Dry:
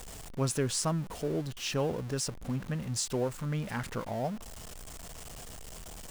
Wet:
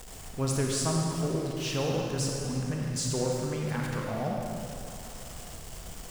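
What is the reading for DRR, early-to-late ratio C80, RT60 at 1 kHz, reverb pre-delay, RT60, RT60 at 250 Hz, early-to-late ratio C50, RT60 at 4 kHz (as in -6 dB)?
-1.0 dB, 1.0 dB, 2.7 s, 30 ms, 2.8 s, 3.0 s, 0.0 dB, 2.2 s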